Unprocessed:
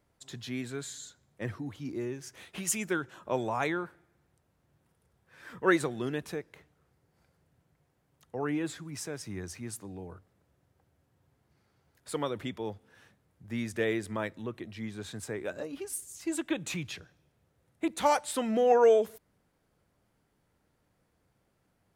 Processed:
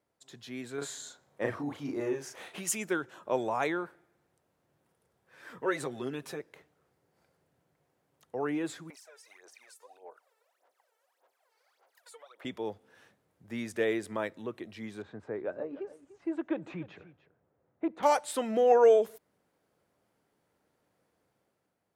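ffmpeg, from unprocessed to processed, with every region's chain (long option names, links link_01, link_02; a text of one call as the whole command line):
ffmpeg -i in.wav -filter_complex "[0:a]asettb=1/sr,asplit=3[link_01][link_02][link_03];[link_01]atrim=end=0.784[link_04];[link_02]atrim=start=0.78:end=2.54,asetpts=PTS-STARTPTS,afade=type=in:duration=0.004:curve=qsin,afade=type=out:start_time=1.756:duration=0.004:curve=qsin,equalizer=frequency=860:width_type=o:width=2.1:gain=7.5,asplit=2[link_05][link_06];[link_06]adelay=35,volume=-3dB[link_07];[link_05][link_07]amix=inputs=2:normalize=0,atrim=end_sample=77616[link_08];[link_03]atrim=start=2.536[link_09];[link_04][link_08]acrossfade=duration=0.004:curve1=hsin:curve2=qsin[link_10];[link_10][link_09]acrossfade=duration=0.004:curve1=qsin:curve2=hsin,asettb=1/sr,asplit=3[link_11][link_12][link_13];[link_11]atrim=end=5.594[link_14];[link_12]atrim=start=5.59:end=6.4,asetpts=PTS-STARTPTS,afade=type=in:duration=0.004:curve=qsin,afade=type=out:start_time=0.806:duration=0.004:curve=qsin,aecho=1:1:7.5:0.72,atrim=end_sample=35721,acompressor=threshold=-38dB:ratio=1.5:attack=3.2:release=140:knee=1:detection=peak[link_15];[link_13]atrim=start=6.396[link_16];[link_14][link_15]acrossfade=duration=0.004:curve1=hsin:curve2=qsin[link_17];[link_17][link_16]acrossfade=duration=0.004:curve1=qsin:curve2=hsin,asettb=1/sr,asplit=3[link_18][link_19][link_20];[link_18]atrim=end=8.904[link_21];[link_19]atrim=start=8.9:end=12.45,asetpts=PTS-STARTPTS,afade=type=in:duration=0.004:curve=qsin,afade=type=out:start_time=3.546:duration=0.004:curve=qsin,highpass=frequency=560:width=0.5412,highpass=frequency=560:width=1.3066,acompressor=threshold=-56dB:ratio=6:attack=3.2:release=140:knee=1:detection=peak,aphaser=in_gain=1:out_gain=1:delay=2.3:decay=0.79:speed=1.7:type=sinusoidal[link_22];[link_20]atrim=start=12.446[link_23];[link_21][link_22]acrossfade=duration=0.004:curve1=hsin:curve2=qsin[link_24];[link_24][link_23]acrossfade=duration=0.004:curve1=qsin:curve2=hsin,asettb=1/sr,asplit=3[link_25][link_26][link_27];[link_25]atrim=end=15.024[link_28];[link_26]atrim=start=15.02:end=18.03,asetpts=PTS-STARTPTS,afade=type=in:duration=0.004:curve=qsin,afade=type=out:start_time=3.006:duration=0.004:curve=qsin,lowpass=1400,aecho=1:1:295:0.15,atrim=end_sample=132741[link_29];[link_27]atrim=start=18.026[link_30];[link_28][link_29]acrossfade=duration=0.004:curve1=hsin:curve2=qsin[link_31];[link_31][link_30]acrossfade=duration=0.004:curve1=qsin:curve2=hsin,highpass=frequency=220:poles=1,equalizer=frequency=510:width_type=o:width=1.8:gain=4,dynaudnorm=framelen=130:gausssize=9:maxgain=6dB,volume=-7.5dB" out.wav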